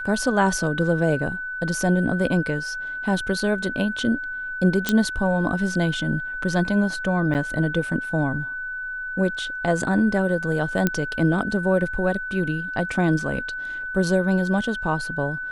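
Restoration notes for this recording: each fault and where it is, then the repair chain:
whistle 1,500 Hz −28 dBFS
0:04.89: click −5 dBFS
0:07.34–0:07.35: drop-out 8.4 ms
0:10.87: click −6 dBFS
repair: click removal
notch filter 1,500 Hz, Q 30
repair the gap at 0:07.34, 8.4 ms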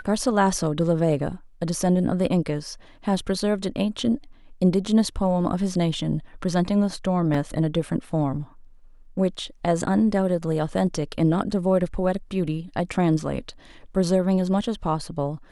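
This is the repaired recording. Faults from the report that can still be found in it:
0:04.89: click

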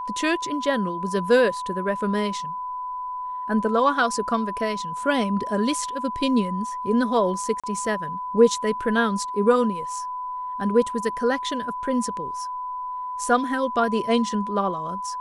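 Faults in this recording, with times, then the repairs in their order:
whistle 1,000 Hz −28 dBFS
0:07.60–0:07.64: drop-out 36 ms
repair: notch filter 1,000 Hz, Q 30
repair the gap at 0:07.60, 36 ms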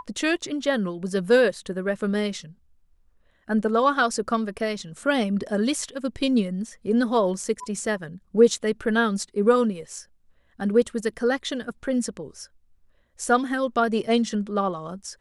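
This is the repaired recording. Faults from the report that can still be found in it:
none of them is left

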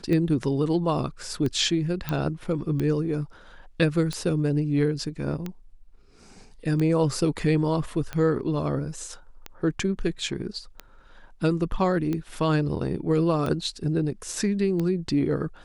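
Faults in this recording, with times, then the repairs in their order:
scratch tick 45 rpm −17 dBFS
0:02.09: click −14 dBFS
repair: click removal

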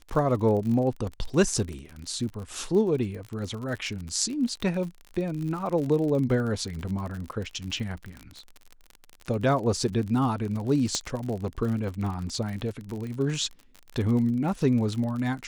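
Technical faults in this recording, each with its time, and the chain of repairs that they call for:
surface crackle 49 per second −32 dBFS
0:10.95: click −14 dBFS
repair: click removal

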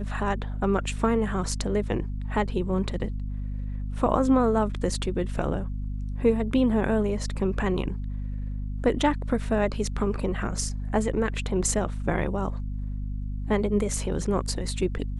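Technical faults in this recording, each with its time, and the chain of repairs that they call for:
mains hum 50 Hz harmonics 5 −31 dBFS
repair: hum removal 50 Hz, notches 5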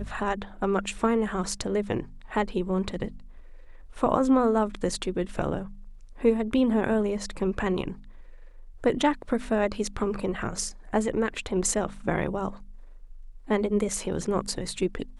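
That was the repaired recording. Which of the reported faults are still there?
none of them is left

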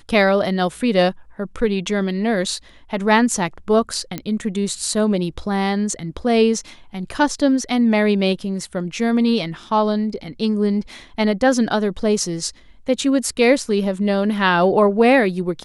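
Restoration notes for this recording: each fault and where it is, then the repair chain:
0:04.18: click −11 dBFS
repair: click removal

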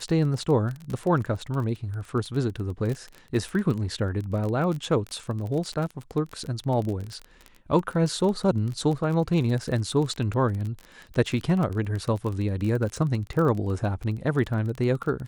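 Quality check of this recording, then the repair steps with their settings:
surface crackle 24 per second −29 dBFS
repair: click removal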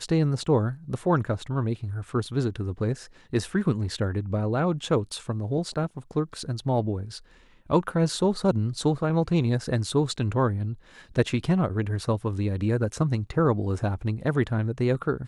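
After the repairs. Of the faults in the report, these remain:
none of them is left

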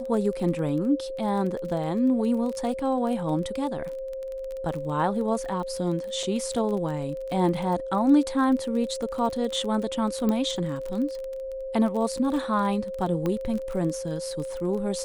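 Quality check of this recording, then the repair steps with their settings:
surface crackle 26 per second −31 dBFS
whistle 530 Hz −31 dBFS
0:06.23: drop-out 3.5 ms
0:10.29: click −15 dBFS
0:13.26: click −16 dBFS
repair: click removal
notch filter 530 Hz, Q 30
repair the gap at 0:06.23, 3.5 ms

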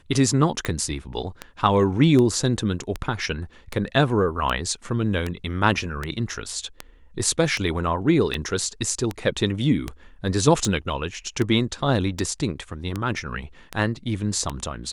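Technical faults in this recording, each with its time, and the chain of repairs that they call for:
scratch tick 78 rpm −12 dBFS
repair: click removal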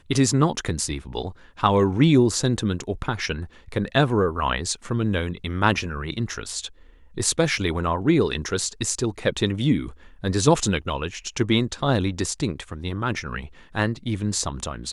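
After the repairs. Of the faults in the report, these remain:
none of them is left

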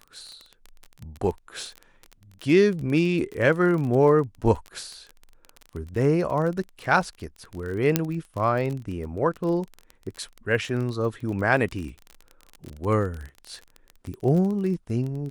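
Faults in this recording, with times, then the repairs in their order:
surface crackle 28 per second −30 dBFS
0:07.96: click −4 dBFS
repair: click removal

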